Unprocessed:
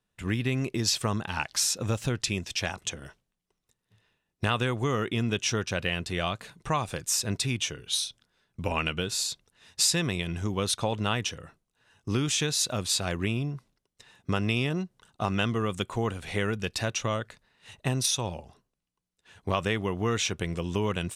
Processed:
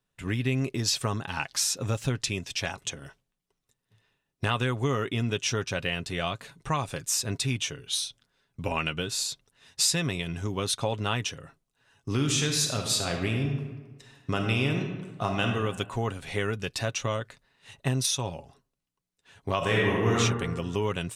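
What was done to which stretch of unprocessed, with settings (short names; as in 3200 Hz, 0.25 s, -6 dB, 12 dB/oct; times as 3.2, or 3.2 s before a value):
12.13–15.47 reverb throw, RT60 1.3 s, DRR 3 dB
19.57–20.16 reverb throw, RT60 1.4 s, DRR -4.5 dB
whole clip: comb 7.3 ms, depth 36%; gain -1 dB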